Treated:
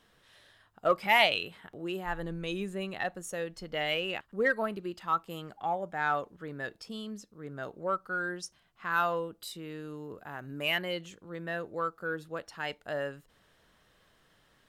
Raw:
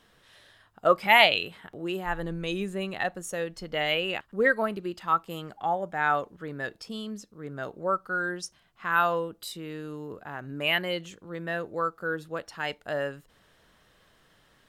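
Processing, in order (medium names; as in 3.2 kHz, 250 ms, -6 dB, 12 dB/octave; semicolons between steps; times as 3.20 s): 10.18–10.72 s: treble shelf 8.7 kHz +9.5 dB; in parallel at -8.5 dB: saturation -20 dBFS, distortion -9 dB; on the sum: trim -6.5 dB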